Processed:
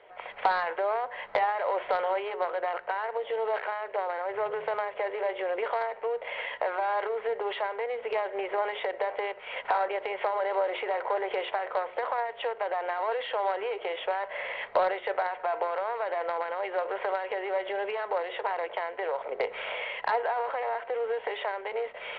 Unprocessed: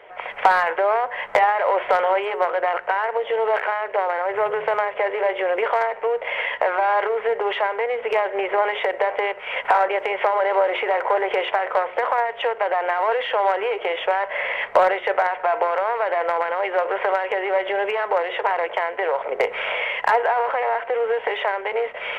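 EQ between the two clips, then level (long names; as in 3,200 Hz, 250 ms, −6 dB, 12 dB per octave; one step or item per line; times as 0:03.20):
low-pass with resonance 4,100 Hz, resonance Q 5.4
high-shelf EQ 2,100 Hz −10.5 dB
−8.0 dB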